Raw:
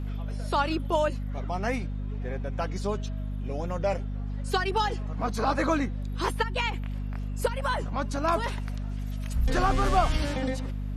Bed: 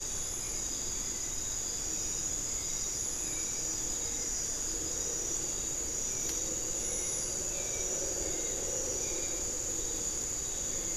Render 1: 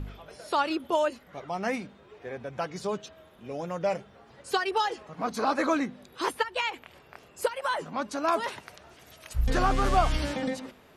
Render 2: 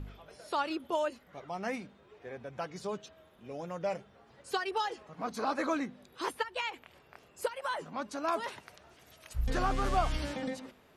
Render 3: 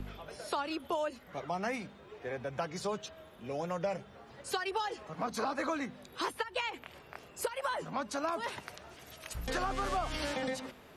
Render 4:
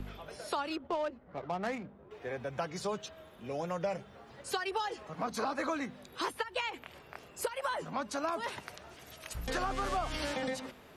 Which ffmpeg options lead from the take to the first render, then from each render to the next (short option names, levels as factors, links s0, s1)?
-af "bandreject=f=50:t=h:w=4,bandreject=f=100:t=h:w=4,bandreject=f=150:t=h:w=4,bandreject=f=200:t=h:w=4,bandreject=f=250:t=h:w=4"
-af "volume=0.501"
-filter_complex "[0:a]asplit=2[s0][s1];[s1]alimiter=limit=0.0631:level=0:latency=1:release=122,volume=1.12[s2];[s0][s2]amix=inputs=2:normalize=0,acrossover=split=160|430[s3][s4][s5];[s3]acompressor=threshold=0.00708:ratio=4[s6];[s4]acompressor=threshold=0.00501:ratio=4[s7];[s5]acompressor=threshold=0.0224:ratio=4[s8];[s6][s7][s8]amix=inputs=3:normalize=0"
-filter_complex "[0:a]asettb=1/sr,asplit=3[s0][s1][s2];[s0]atrim=end=0.764[s3];[s1]atrim=start=0.76:end=2.11,asetpts=PTS-STARTPTS,afade=t=in:d=0.004:c=qsin,afade=t=out:st=1.346:d=0.004:c=qsin,adynamicsmooth=sensitivity=7.5:basefreq=810[s4];[s2]atrim=start=2.106[s5];[s3][s4]acrossfade=d=0.004:c1=hsin:c2=qsin[s6];[s6][s5]acrossfade=d=0.004:c1=qsin:c2=hsin"